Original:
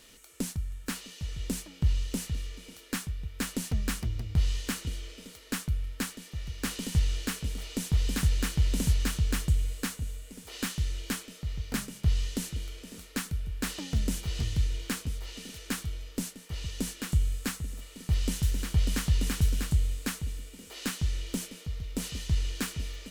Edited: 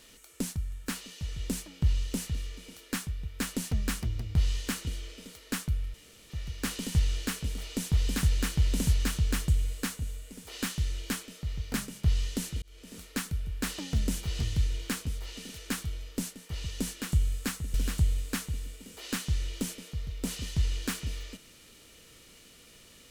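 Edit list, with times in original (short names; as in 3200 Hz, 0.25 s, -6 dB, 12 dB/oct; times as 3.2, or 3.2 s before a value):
5.94–6.3 room tone
12.62–12.97 fade in
17.74–19.47 cut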